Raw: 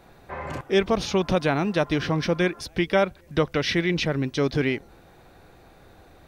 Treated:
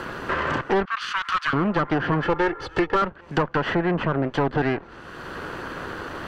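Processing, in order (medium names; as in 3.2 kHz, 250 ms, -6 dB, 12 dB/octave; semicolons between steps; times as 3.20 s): comb filter that takes the minimum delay 0.66 ms; 0.85–1.53 s: Chebyshev high-pass 1.2 kHz, order 4; 2.23–3.02 s: comb 2.3 ms, depth 85%; 3.74–4.55 s: peaking EQ 5.5 kHz -14.5 dB -> -3.5 dB 1.9 oct; low-pass that closes with the level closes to 1.7 kHz, closed at -22 dBFS; overdrive pedal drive 18 dB, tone 4.9 kHz, clips at -9.5 dBFS; treble shelf 2.2 kHz -9 dB; three bands compressed up and down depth 70%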